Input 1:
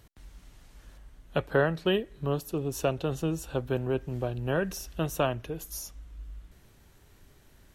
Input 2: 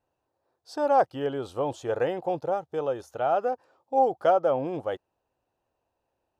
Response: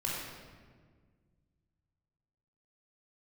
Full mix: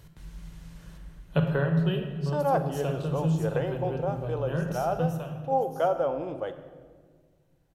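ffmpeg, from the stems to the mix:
-filter_complex "[0:a]equalizer=f=160:w=4.2:g=14,volume=0.891,afade=t=out:st=1.1:d=0.56:silence=0.316228,afade=t=out:st=4.93:d=0.35:silence=0.281838,asplit=2[s0][s1];[s1]volume=0.596[s2];[1:a]adelay=1550,volume=0.531,asplit=2[s3][s4];[s4]volume=0.266[s5];[2:a]atrim=start_sample=2205[s6];[s2][s5]amix=inputs=2:normalize=0[s7];[s7][s6]afir=irnorm=-1:irlink=0[s8];[s0][s3][s8]amix=inputs=3:normalize=0"

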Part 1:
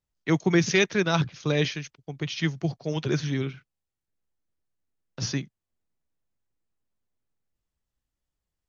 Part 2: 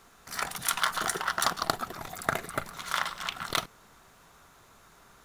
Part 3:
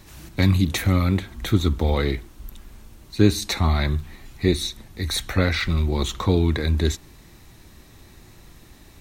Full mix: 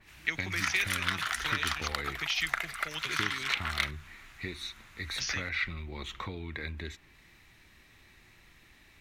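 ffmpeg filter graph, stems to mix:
-filter_complex "[0:a]acompressor=threshold=0.0355:ratio=6,highpass=f=290:p=1,highshelf=f=4500:g=10.5,volume=0.531[s0];[1:a]highpass=560,adelay=250,volume=0.596[s1];[2:a]acompressor=threshold=0.0794:ratio=6,adynamicequalizer=threshold=0.00355:dfrequency=3500:dqfactor=0.7:tfrequency=3500:tqfactor=0.7:attack=5:release=100:ratio=0.375:range=2.5:mode=cutabove:tftype=highshelf,volume=0.178[s2];[s0][s1]amix=inputs=2:normalize=0,equalizer=f=460:t=o:w=2.9:g=-6.5,acompressor=threshold=0.0158:ratio=6,volume=1[s3];[s2][s3]amix=inputs=2:normalize=0,equalizer=f=2200:t=o:w=1.6:g=15"

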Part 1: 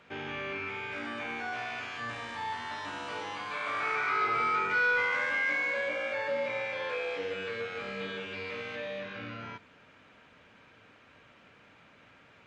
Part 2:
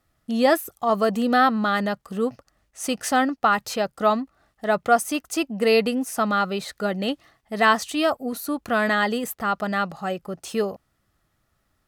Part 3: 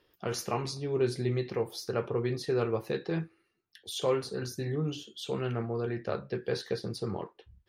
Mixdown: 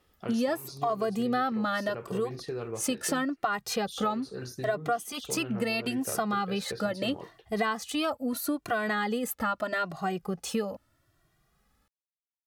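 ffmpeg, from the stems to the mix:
-filter_complex "[1:a]asplit=2[s0][s1];[s1]adelay=2,afreqshift=0.77[s2];[s0][s2]amix=inputs=2:normalize=1,volume=1.41[s3];[2:a]acompressor=threshold=0.0355:ratio=6,volume=0.75[s4];[s3][s4]amix=inputs=2:normalize=0,acompressor=threshold=0.0501:ratio=6"

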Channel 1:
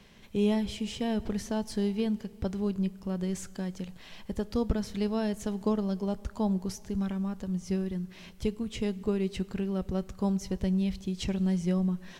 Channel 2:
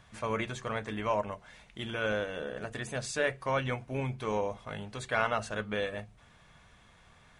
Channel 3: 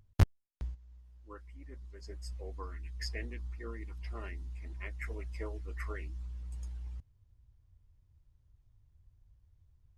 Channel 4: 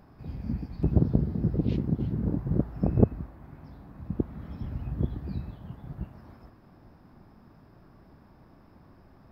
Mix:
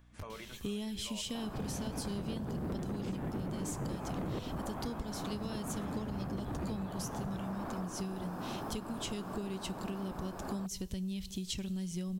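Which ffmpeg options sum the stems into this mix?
-filter_complex "[0:a]equalizer=f=670:w=1.2:g=-6,aexciter=amount=3.1:drive=3.4:freq=2900,adelay=300,volume=1.12[s0];[1:a]highpass=150,alimiter=limit=0.0708:level=0:latency=1,aeval=exprs='val(0)+0.00398*(sin(2*PI*60*n/s)+sin(2*PI*2*60*n/s)/2+sin(2*PI*3*60*n/s)/3+sin(2*PI*4*60*n/s)/4+sin(2*PI*5*60*n/s)/5)':c=same,volume=0.251[s1];[2:a]highshelf=f=8100:g=9.5,acompressor=threshold=0.00794:ratio=3,volume=0.447[s2];[3:a]equalizer=f=2000:t=o:w=0.31:g=-8,acompressor=threshold=0.0447:ratio=6,asplit=2[s3][s4];[s4]highpass=f=720:p=1,volume=126,asoftclip=type=tanh:threshold=0.237[s5];[s3][s5]amix=inputs=2:normalize=0,lowpass=f=1300:p=1,volume=0.501,adelay=1350,volume=0.447[s6];[s0][s1][s2][s6]amix=inputs=4:normalize=0,acompressor=threshold=0.0158:ratio=6"

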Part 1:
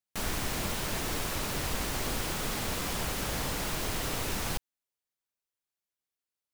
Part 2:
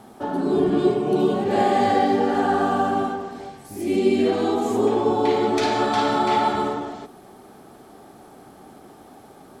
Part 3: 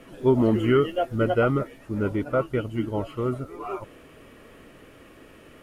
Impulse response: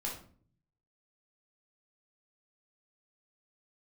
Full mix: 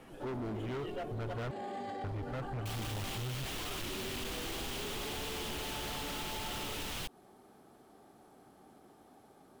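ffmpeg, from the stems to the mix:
-filter_complex "[0:a]equalizer=f=3100:w=1.9:g=9.5,adelay=2500,volume=0.668[s0];[1:a]alimiter=limit=0.126:level=0:latency=1:release=15,volume=0.2[s1];[2:a]asubboost=boost=9.5:cutoff=120,acontrast=88,volume=0.188,asplit=3[s2][s3][s4];[s2]atrim=end=1.51,asetpts=PTS-STARTPTS,afade=t=out:st=1.506:d=0.004:c=hsin[s5];[s3]atrim=start=1.51:end=2.04,asetpts=PTS-STARTPTS,volume=0[s6];[s4]atrim=start=2.04,asetpts=PTS-STARTPTS,afade=t=in:d=0.004:c=hsin[s7];[s5][s6][s7]concat=n=3:v=0:a=1[s8];[s0][s1][s8]amix=inputs=3:normalize=0,volume=35.5,asoftclip=hard,volume=0.0282,acompressor=threshold=0.0141:ratio=6"

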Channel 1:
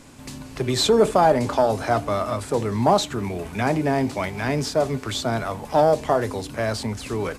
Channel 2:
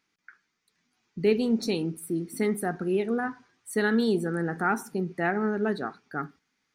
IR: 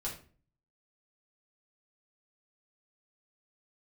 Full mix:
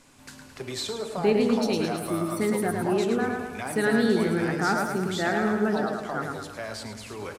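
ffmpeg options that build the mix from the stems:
-filter_complex "[0:a]lowshelf=f=470:g=-8,acompressor=threshold=0.0708:ratio=6,volume=0.376,asplit=3[s0][s1][s2];[s1]volume=0.398[s3];[s2]volume=0.447[s4];[1:a]volume=1,asplit=2[s5][s6];[s6]volume=0.668[s7];[2:a]atrim=start_sample=2205[s8];[s3][s8]afir=irnorm=-1:irlink=0[s9];[s4][s7]amix=inputs=2:normalize=0,aecho=0:1:108|216|324|432|540|648|756|864:1|0.54|0.292|0.157|0.085|0.0459|0.0248|0.0134[s10];[s0][s5][s9][s10]amix=inputs=4:normalize=0"

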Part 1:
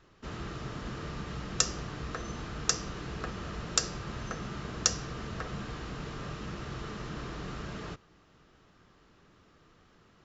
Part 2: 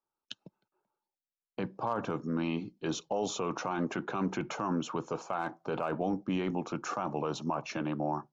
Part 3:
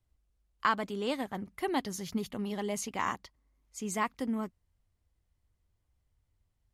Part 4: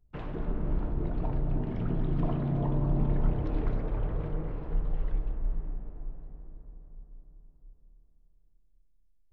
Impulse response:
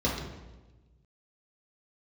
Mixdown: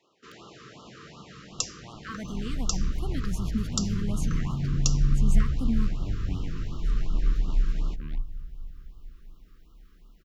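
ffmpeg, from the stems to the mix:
-filter_complex "[0:a]highpass=330,volume=0.75[s0];[1:a]aeval=exprs='0.112*(cos(1*acos(clip(val(0)/0.112,-1,1)))-cos(1*PI/2))+0.0282*(cos(7*acos(clip(val(0)/0.112,-1,1)))-cos(7*PI/2))':c=same,volume=0.168[s1];[2:a]alimiter=limit=0.0794:level=0:latency=1,adelay=1400,volume=0.596[s2];[3:a]highshelf=f=6300:g=11.5,crystalizer=i=8.5:c=0,asplit=2[s3][s4];[s4]adelay=11,afreqshift=-0.33[s5];[s3][s5]amix=inputs=2:normalize=1,adelay=2100,volume=0.266[s6];[s0][s1][s2][s6]amix=inputs=4:normalize=0,asubboost=boost=11:cutoff=160,afftfilt=real='re*(1-between(b*sr/1024,690*pow(2000/690,0.5+0.5*sin(2*PI*2.7*pts/sr))/1.41,690*pow(2000/690,0.5+0.5*sin(2*PI*2.7*pts/sr))*1.41))':imag='im*(1-between(b*sr/1024,690*pow(2000/690,0.5+0.5*sin(2*PI*2.7*pts/sr))/1.41,690*pow(2000/690,0.5+0.5*sin(2*PI*2.7*pts/sr))*1.41))':win_size=1024:overlap=0.75"

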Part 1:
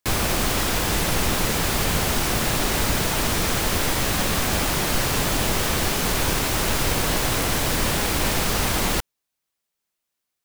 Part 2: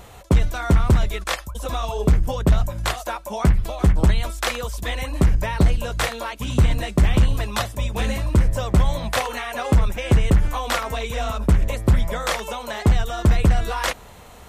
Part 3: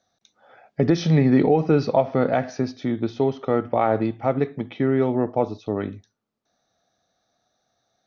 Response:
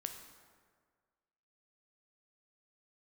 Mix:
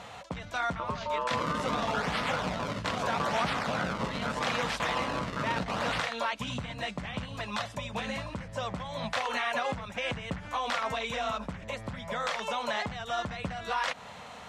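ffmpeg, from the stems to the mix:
-filter_complex "[0:a]acrossover=split=1700[s0][s1];[s0]aeval=exprs='val(0)*(1-0.7/2+0.7/2*cos(2*PI*8.2*n/s))':c=same[s2];[s1]aeval=exprs='val(0)*(1-0.7/2-0.7/2*cos(2*PI*8.2*n/s))':c=same[s3];[s2][s3]amix=inputs=2:normalize=0,acrusher=samples=31:mix=1:aa=0.000001:lfo=1:lforange=49.6:lforate=0.79,adelay=1250,volume=0.668[s4];[1:a]acompressor=threshold=0.0501:ratio=2.5,volume=1.33[s5];[2:a]aeval=exprs='val(0)*sin(2*PI*750*n/s)':c=same,volume=0.473,asplit=2[s6][s7];[s7]apad=whole_len=515763[s8];[s4][s8]sidechaingate=range=0.0224:threshold=0.00447:ratio=16:detection=peak[s9];[s5][s6]amix=inputs=2:normalize=0,alimiter=limit=0.119:level=0:latency=1:release=127,volume=1[s10];[s9][s10]amix=inputs=2:normalize=0,highpass=180,lowpass=5000,equalizer=f=360:t=o:w=0.64:g=-13"

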